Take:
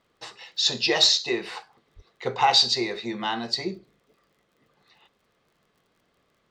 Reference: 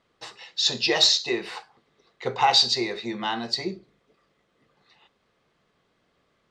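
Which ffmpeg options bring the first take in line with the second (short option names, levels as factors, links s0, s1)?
-filter_complex "[0:a]adeclick=t=4,asplit=3[s0][s1][s2];[s0]afade=t=out:st=1.95:d=0.02[s3];[s1]highpass=f=140:w=0.5412,highpass=f=140:w=1.3066,afade=t=in:st=1.95:d=0.02,afade=t=out:st=2.07:d=0.02[s4];[s2]afade=t=in:st=2.07:d=0.02[s5];[s3][s4][s5]amix=inputs=3:normalize=0"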